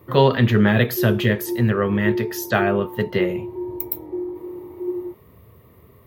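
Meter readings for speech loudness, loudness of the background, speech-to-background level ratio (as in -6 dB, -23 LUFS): -20.5 LUFS, -29.5 LUFS, 9.0 dB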